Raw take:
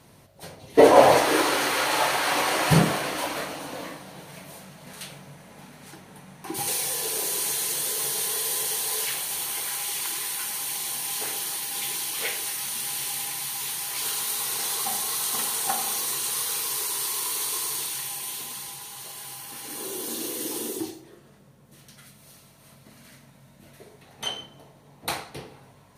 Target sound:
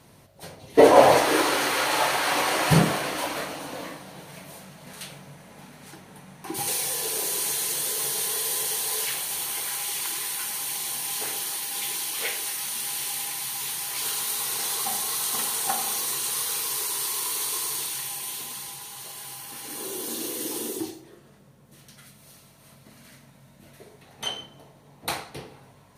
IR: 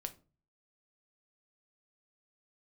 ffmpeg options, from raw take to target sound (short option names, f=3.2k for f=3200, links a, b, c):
-filter_complex "[0:a]asettb=1/sr,asplit=3[a][b][c];[a]atrim=end=11.434[d];[b]atrim=start=11.43:end=13.47,asetpts=PTS-STARTPTS,afade=t=in:d=0.004:c=qsin,afade=t=out:st=2.036:d=0.004:c=qsin,highpass=f=150:p=1[e];[c]atrim=start=13.466[f];[d][e]acrossfade=d=0.004:c1=hsin:c2=qsin[g];[g][f]acrossfade=d=0.004:c1=qsin:c2=hsin"